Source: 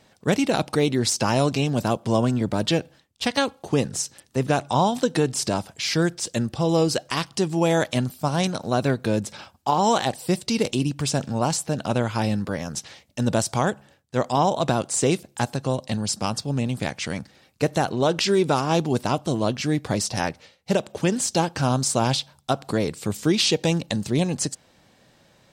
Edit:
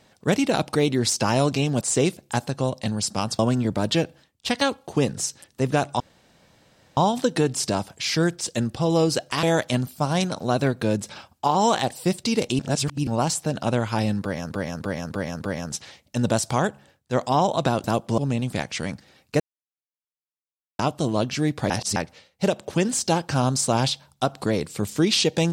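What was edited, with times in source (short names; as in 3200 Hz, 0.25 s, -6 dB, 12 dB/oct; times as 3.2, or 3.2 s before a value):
1.81–2.15 swap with 14.87–16.45
4.76 insert room tone 0.97 s
7.22–7.66 cut
10.82–11.3 reverse
12.44–12.74 loop, 5 plays
17.67–19.06 mute
19.97–20.23 reverse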